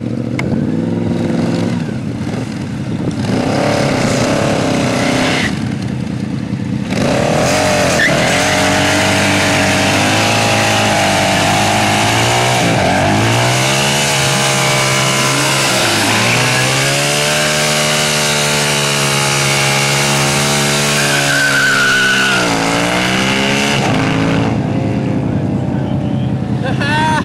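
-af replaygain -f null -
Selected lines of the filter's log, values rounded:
track_gain = -4.6 dB
track_peak = 0.406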